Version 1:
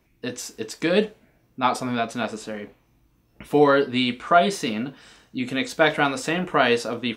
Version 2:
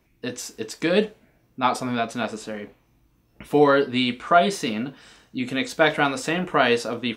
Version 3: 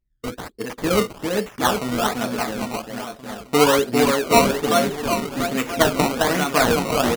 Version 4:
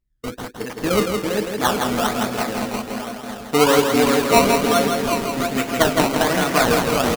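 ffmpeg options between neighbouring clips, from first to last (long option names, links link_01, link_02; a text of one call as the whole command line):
ffmpeg -i in.wav -af anull out.wav
ffmpeg -i in.wav -af "anlmdn=2.51,aecho=1:1:400|760|1084|1376|1638:0.631|0.398|0.251|0.158|0.1,acrusher=samples=18:mix=1:aa=0.000001:lfo=1:lforange=18:lforate=1.2,volume=1dB" out.wav
ffmpeg -i in.wav -af "aecho=1:1:164|328|492|656|820:0.562|0.231|0.0945|0.0388|0.0159" out.wav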